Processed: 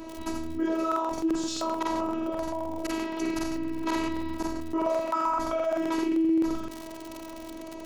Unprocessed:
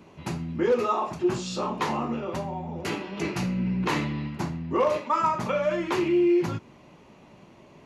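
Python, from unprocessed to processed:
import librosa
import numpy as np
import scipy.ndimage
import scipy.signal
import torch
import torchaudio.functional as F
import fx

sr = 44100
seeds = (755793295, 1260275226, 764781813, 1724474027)

p1 = fx.peak_eq(x, sr, hz=2500.0, db=-6.5, octaves=1.3)
p2 = p1 + fx.echo_single(p1, sr, ms=83, db=-7.0, dry=0)
p3 = fx.dmg_crackle(p2, sr, seeds[0], per_s=62.0, level_db=-38.0)
p4 = fx.robotise(p3, sr, hz=325.0)
p5 = fx.buffer_crackle(p4, sr, first_s=0.87, period_s=0.13, block=2048, kind='repeat')
p6 = fx.env_flatten(p5, sr, amount_pct=50)
y = p6 * librosa.db_to_amplitude(-5.0)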